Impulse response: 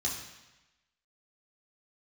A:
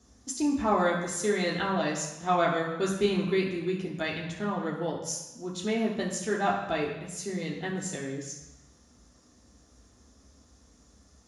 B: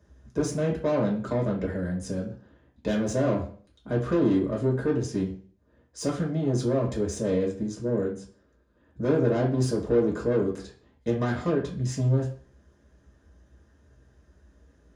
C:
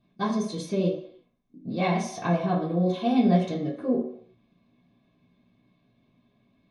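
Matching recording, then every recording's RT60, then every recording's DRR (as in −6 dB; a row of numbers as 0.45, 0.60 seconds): A; 1.0, 0.45, 0.65 seconds; −4.0, −3.0, −8.5 decibels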